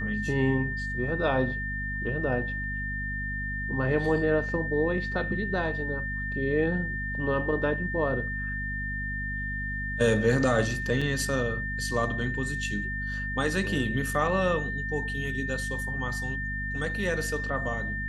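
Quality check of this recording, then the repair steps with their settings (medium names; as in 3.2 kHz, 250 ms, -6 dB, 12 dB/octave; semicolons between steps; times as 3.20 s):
hum 50 Hz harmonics 5 -35 dBFS
whine 1.8 kHz -32 dBFS
11.01–11.02 s: dropout 5.2 ms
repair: de-hum 50 Hz, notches 5; band-stop 1.8 kHz, Q 30; interpolate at 11.01 s, 5.2 ms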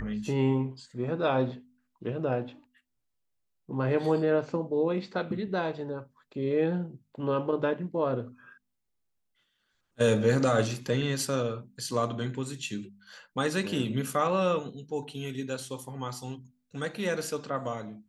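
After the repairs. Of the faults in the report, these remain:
nothing left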